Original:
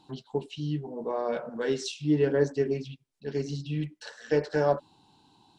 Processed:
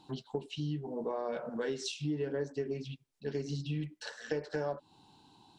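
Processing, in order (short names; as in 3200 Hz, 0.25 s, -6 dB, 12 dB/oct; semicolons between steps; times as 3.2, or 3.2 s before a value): compressor 6:1, threshold -32 dBFS, peak gain reduction 13 dB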